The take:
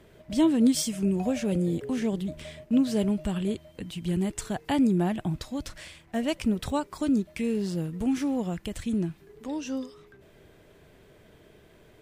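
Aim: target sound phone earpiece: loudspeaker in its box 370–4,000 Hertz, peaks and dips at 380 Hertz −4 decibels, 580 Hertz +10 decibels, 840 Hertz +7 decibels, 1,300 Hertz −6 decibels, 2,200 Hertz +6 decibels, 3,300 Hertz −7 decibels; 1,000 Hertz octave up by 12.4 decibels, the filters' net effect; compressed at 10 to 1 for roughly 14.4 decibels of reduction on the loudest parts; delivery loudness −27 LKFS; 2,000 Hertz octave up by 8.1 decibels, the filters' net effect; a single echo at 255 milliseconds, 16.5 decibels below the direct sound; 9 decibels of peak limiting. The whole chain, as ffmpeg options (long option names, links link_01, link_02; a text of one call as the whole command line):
ffmpeg -i in.wav -af "equalizer=frequency=1000:width_type=o:gain=8,equalizer=frequency=2000:width_type=o:gain=5.5,acompressor=threshold=-32dB:ratio=10,alimiter=level_in=4.5dB:limit=-24dB:level=0:latency=1,volume=-4.5dB,highpass=370,equalizer=frequency=380:width_type=q:width=4:gain=-4,equalizer=frequency=580:width_type=q:width=4:gain=10,equalizer=frequency=840:width_type=q:width=4:gain=7,equalizer=frequency=1300:width_type=q:width=4:gain=-6,equalizer=frequency=2200:width_type=q:width=4:gain=6,equalizer=frequency=3300:width_type=q:width=4:gain=-7,lowpass=frequency=4000:width=0.5412,lowpass=frequency=4000:width=1.3066,aecho=1:1:255:0.15,volume=12.5dB" out.wav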